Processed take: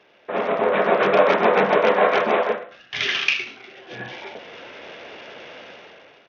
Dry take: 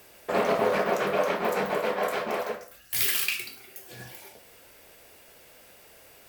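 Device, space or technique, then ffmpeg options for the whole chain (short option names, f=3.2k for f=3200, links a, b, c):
Bluetooth headset: -af "highpass=180,dynaudnorm=f=230:g=7:m=17dB,aresample=8000,aresample=44100" -ar 48000 -c:a sbc -b:a 64k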